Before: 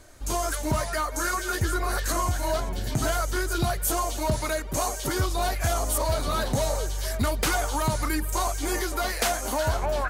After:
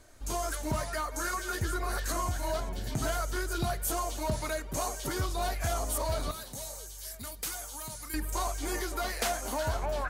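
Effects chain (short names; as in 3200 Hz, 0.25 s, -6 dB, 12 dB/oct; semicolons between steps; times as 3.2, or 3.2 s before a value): 6.31–8.14 pre-emphasis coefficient 0.8; reverb RT60 0.60 s, pre-delay 4 ms, DRR 17.5 dB; gain -6 dB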